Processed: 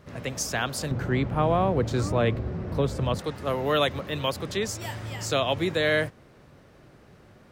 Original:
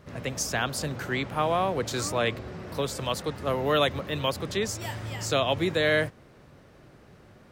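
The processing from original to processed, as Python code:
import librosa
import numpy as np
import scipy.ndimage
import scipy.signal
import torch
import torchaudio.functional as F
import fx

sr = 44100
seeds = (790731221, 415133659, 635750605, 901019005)

y = fx.tilt_eq(x, sr, slope=-3.0, at=(0.91, 3.19))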